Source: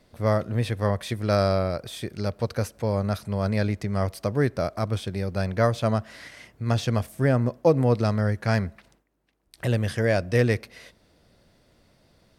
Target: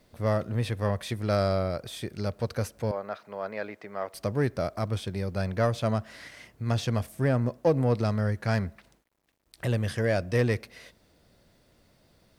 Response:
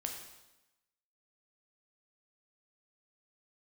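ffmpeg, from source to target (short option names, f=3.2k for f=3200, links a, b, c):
-filter_complex "[0:a]asettb=1/sr,asplit=3[a][b][c];[a]atrim=end=2.914[d];[b]atrim=start=2.91:end=4.14,asetpts=PTS-STARTPTS,afade=t=in:d=0.004:c=qsin,afade=t=out:st=1.226:d=0.004:c=qsin,highpass=490,lowpass=2.3k[e];[c]atrim=start=4.136[f];[d][e]acrossfade=d=0.004:c1=hsin:c2=qsin[g];[g][f]acrossfade=d=0.004:c1=qsin:c2=hsin,asplit=2[h][i];[i]asoftclip=type=tanh:threshold=-21dB,volume=-5dB[j];[h][j]amix=inputs=2:normalize=0,acrusher=bits=10:mix=0:aa=0.000001,volume=-6dB"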